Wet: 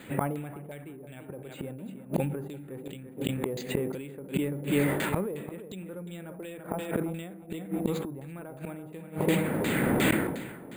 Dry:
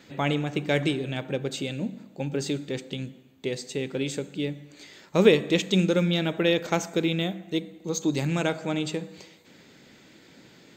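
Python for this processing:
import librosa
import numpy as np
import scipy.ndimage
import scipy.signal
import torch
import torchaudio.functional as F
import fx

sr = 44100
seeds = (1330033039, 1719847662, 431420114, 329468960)

p1 = fx.recorder_agc(x, sr, target_db=-10.0, rise_db_per_s=15.0, max_gain_db=30)
p2 = 10.0 ** (-19.5 / 20.0) * np.tanh(p1 / 10.0 ** (-19.5 / 20.0))
p3 = p1 + (p2 * librosa.db_to_amplitude(-10.0))
p4 = fx.air_absorb(p3, sr, metres=230.0)
p5 = p4 + fx.echo_feedback(p4, sr, ms=338, feedback_pct=28, wet_db=-10, dry=0)
p6 = fx.gate_flip(p5, sr, shuts_db=-18.0, range_db=-27)
p7 = fx.filter_lfo_lowpass(p6, sr, shape='saw_down', hz=2.8, low_hz=740.0, high_hz=4100.0, q=1.3)
p8 = np.repeat(scipy.signal.resample_poly(p7, 1, 4), 4)[:len(p7)]
p9 = fx.sustainer(p8, sr, db_per_s=46.0)
y = p9 * librosa.db_to_amplitude(4.0)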